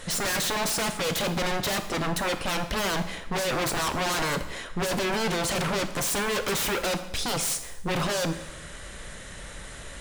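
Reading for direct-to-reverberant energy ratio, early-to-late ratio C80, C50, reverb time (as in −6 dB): 8.0 dB, 13.0 dB, 10.5 dB, 0.90 s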